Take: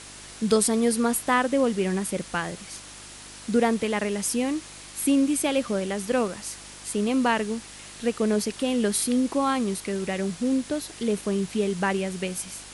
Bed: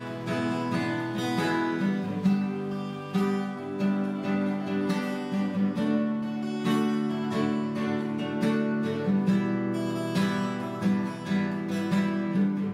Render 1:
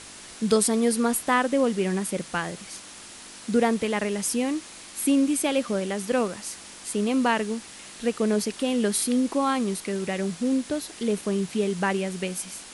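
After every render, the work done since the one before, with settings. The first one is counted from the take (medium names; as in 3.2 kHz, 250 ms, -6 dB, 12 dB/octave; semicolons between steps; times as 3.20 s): de-hum 50 Hz, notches 3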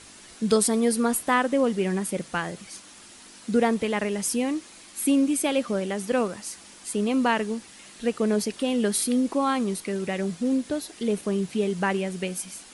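noise reduction 6 dB, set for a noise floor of -44 dBFS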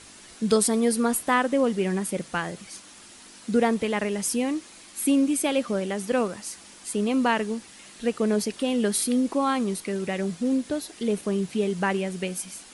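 no audible change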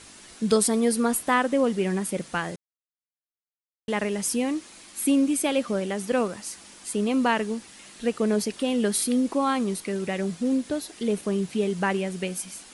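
2.56–3.88 s: mute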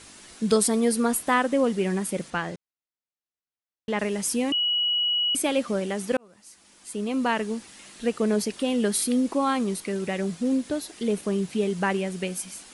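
2.30–3.99 s: distance through air 69 m; 4.52–5.35 s: bleep 2.92 kHz -21 dBFS; 6.17–7.57 s: fade in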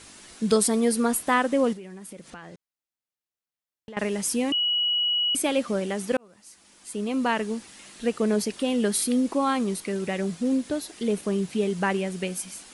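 1.73–3.97 s: compression 5:1, threshold -39 dBFS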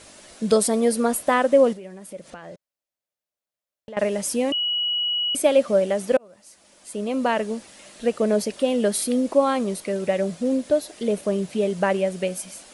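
peaking EQ 590 Hz +12.5 dB 0.44 oct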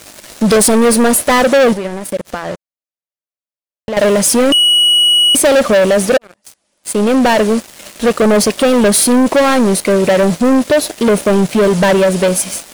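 waveshaping leveller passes 5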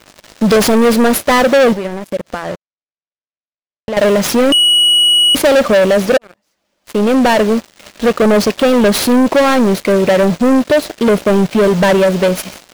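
median filter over 5 samples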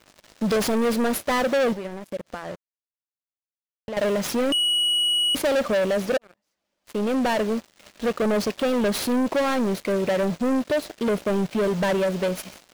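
trim -12 dB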